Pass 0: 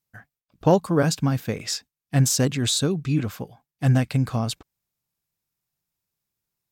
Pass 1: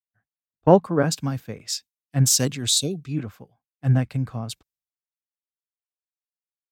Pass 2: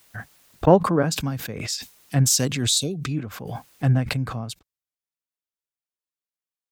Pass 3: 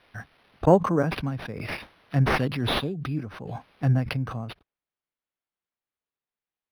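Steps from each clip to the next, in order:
gain on a spectral selection 0:02.71–0:03.02, 770–2,100 Hz −25 dB; multiband upward and downward expander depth 100%; level −4 dB
background raised ahead of every attack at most 40 dB per second; level −1 dB
linearly interpolated sample-rate reduction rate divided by 6×; level −2.5 dB

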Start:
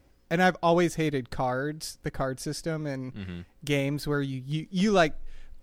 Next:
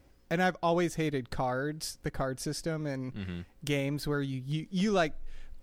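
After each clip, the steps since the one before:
downward compressor 1.5 to 1, threshold −33 dBFS, peak gain reduction 6 dB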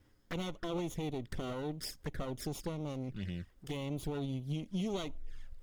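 lower of the sound and its delayed copy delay 0.58 ms
brickwall limiter −25.5 dBFS, peak gain reduction 11.5 dB
flanger swept by the level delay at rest 11.7 ms, full sweep at −33.5 dBFS
level −1 dB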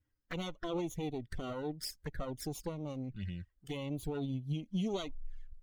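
spectral dynamics exaggerated over time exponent 1.5
level +2.5 dB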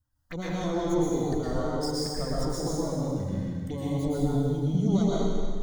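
phaser swept by the level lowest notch 380 Hz, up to 2,700 Hz, full sweep at −38.5 dBFS
dense smooth reverb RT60 1.9 s, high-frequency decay 0.9×, pre-delay 100 ms, DRR −7 dB
level +4.5 dB

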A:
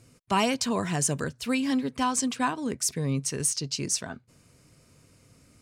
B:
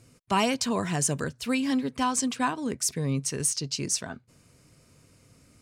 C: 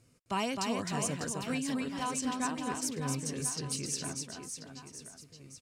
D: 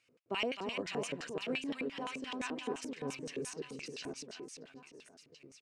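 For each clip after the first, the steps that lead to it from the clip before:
no processing that can be heard
reverse bouncing-ball delay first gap 260 ms, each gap 1.3×, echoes 5; level −8.5 dB
auto-filter band-pass square 5.8 Hz 420–2,600 Hz; level +5.5 dB

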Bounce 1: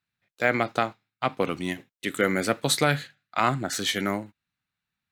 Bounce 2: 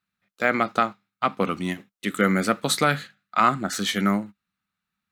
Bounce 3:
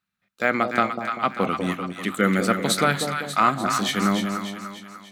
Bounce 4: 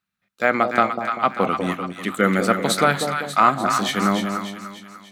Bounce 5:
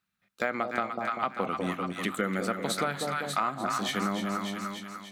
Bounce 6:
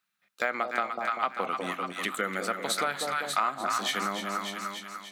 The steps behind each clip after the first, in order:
thirty-one-band graphic EQ 125 Hz −7 dB, 200 Hz +10 dB, 1,250 Hz +8 dB
echo with a time of its own for lows and highs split 870 Hz, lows 195 ms, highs 295 ms, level −6 dB
dynamic equaliser 780 Hz, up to +5 dB, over −33 dBFS, Q 0.71
downward compressor 4 to 1, threshold −28 dBFS, peak gain reduction 15 dB
high-pass filter 690 Hz 6 dB per octave; level +3 dB

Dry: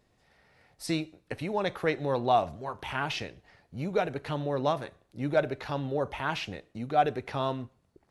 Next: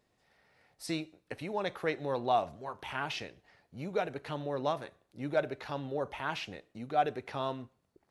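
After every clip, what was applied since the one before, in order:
low-shelf EQ 130 Hz −8 dB
level −4 dB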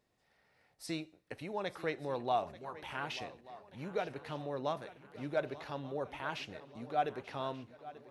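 feedback echo with a long and a short gap by turns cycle 1,184 ms, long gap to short 3 to 1, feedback 47%, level −16.5 dB
level −4 dB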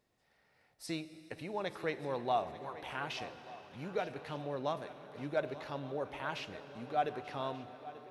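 convolution reverb RT60 5.1 s, pre-delay 15 ms, DRR 12.5 dB

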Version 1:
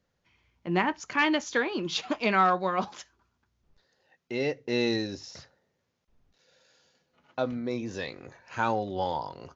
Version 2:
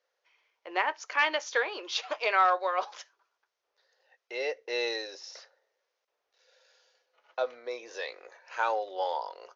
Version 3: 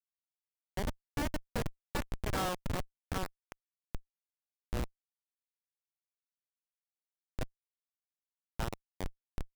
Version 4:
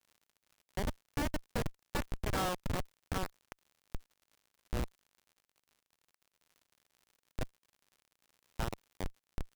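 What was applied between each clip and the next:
elliptic band-pass filter 480–6,100 Hz, stop band 40 dB
feedback echo with a band-pass in the loop 777 ms, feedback 66%, band-pass 1,700 Hz, level −3 dB; harmonic generator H 3 −22 dB, 7 −26 dB, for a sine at −10 dBFS; comparator with hysteresis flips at −25.5 dBFS; level +4 dB
surface crackle 89 per second −52 dBFS

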